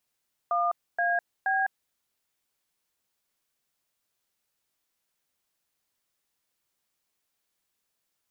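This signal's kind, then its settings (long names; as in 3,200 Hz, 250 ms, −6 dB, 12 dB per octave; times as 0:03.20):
touch tones "1AB", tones 205 ms, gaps 270 ms, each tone −25.5 dBFS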